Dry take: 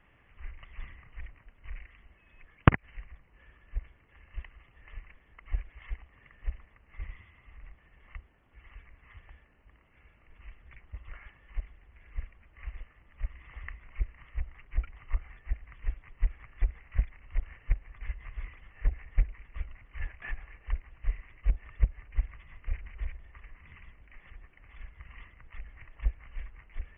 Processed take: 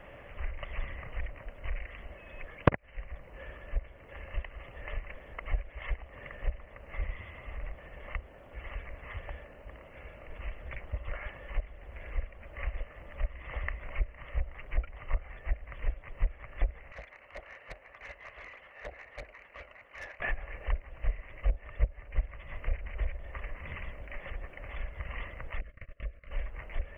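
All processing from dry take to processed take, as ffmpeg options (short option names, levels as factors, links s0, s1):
-filter_complex "[0:a]asettb=1/sr,asplit=3[s0][s1][s2];[s0]atrim=end=16.924[s3];[s1]atrim=start=16.92:end=20.2,asetpts=PTS-STARTPTS,afade=t=in:d=0.004:c=qsin,afade=t=out:st=3.276:d=0.004:c=qsin,highpass=f=1400:p=1,highshelf=f=2200:g=-8,aeval=exprs='(tanh(282*val(0)+0.15)-tanh(0.15))/282':c=same[s4];[s2]atrim=start=20.196[s5];[s3][s4]acrossfade=d=0.004:c1=hsin:c2=qsin[s6];[s6][s5]acrossfade=d=0.004:c1=qsin:c2=hsin,asettb=1/sr,asplit=3[s7][s8][s9];[s7]atrim=end=25.614[s10];[s8]atrim=start=25.61:end=26.31,asetpts=PTS-STARTPTS,afade=t=in:d=0.004:c=qsin,afade=t=out:st=0.696:d=0.004:c=qsin,agate=range=0.0562:threshold=0.00398:ratio=16:release=100:detection=peak,acompressor=threshold=0.002:ratio=2:attack=3.2:release=140:knee=1:detection=peak,asuperstop=centerf=850:order=8:qfactor=2.2[s11];[s9]atrim=start=26.306[s12];[s10][s11]acrossfade=d=0.004:c1=hsin:c2=qsin[s13];[s13][s12]acrossfade=d=0.004:c1=qsin:c2=hsin,equalizer=f=570:w=2.3:g=14.5,acompressor=threshold=0.00562:ratio=2,volume=3.55"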